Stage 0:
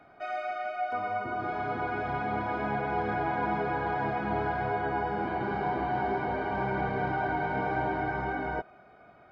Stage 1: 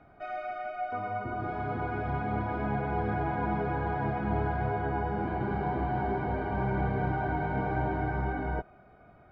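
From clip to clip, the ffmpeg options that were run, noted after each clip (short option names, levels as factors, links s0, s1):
-af "aemphasis=mode=reproduction:type=bsi,volume=0.708"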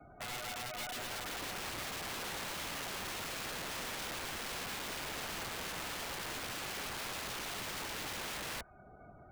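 -filter_complex "[0:a]acrossover=split=110|1000[s0][s1][s2];[s0]acompressor=threshold=0.0112:ratio=4[s3];[s1]acompressor=threshold=0.00501:ratio=4[s4];[s2]acompressor=threshold=0.01:ratio=4[s5];[s3][s4][s5]amix=inputs=3:normalize=0,afftdn=nr=26:nf=-60,aeval=exprs='(mod(75*val(0)+1,2)-1)/75':c=same,volume=1.12"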